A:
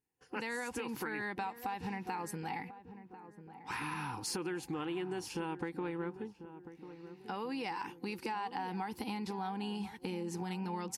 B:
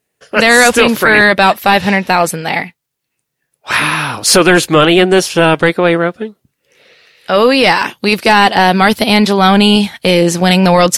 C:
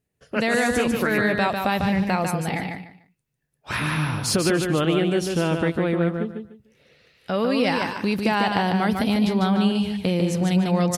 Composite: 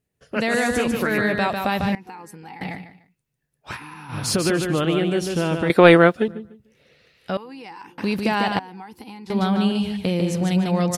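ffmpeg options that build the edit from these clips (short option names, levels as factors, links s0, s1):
-filter_complex "[0:a]asplit=4[s0][s1][s2][s3];[2:a]asplit=6[s4][s5][s6][s7][s8][s9];[s4]atrim=end=1.952[s10];[s0]atrim=start=1.948:end=2.612[s11];[s5]atrim=start=2.608:end=3.78[s12];[s1]atrim=start=3.68:end=4.18[s13];[s6]atrim=start=4.08:end=5.702[s14];[1:a]atrim=start=5.698:end=6.282[s15];[s7]atrim=start=6.278:end=7.372[s16];[s2]atrim=start=7.368:end=7.982[s17];[s8]atrim=start=7.978:end=8.592[s18];[s3]atrim=start=8.588:end=9.302[s19];[s9]atrim=start=9.298[s20];[s10][s11]acrossfade=d=0.004:c1=hsin:c2=hsin[s21];[s21][s12]acrossfade=d=0.004:c1=hsin:c2=hsin[s22];[s22][s13]acrossfade=d=0.1:c1=tri:c2=tri[s23];[s23][s14]acrossfade=d=0.1:c1=tri:c2=tri[s24];[s24][s15]acrossfade=d=0.004:c1=hsin:c2=hsin[s25];[s25][s16]acrossfade=d=0.004:c1=hsin:c2=hsin[s26];[s26][s17]acrossfade=d=0.004:c1=hsin:c2=hsin[s27];[s27][s18]acrossfade=d=0.004:c1=hsin:c2=hsin[s28];[s28][s19]acrossfade=d=0.004:c1=hsin:c2=hsin[s29];[s29][s20]acrossfade=d=0.004:c1=hsin:c2=hsin"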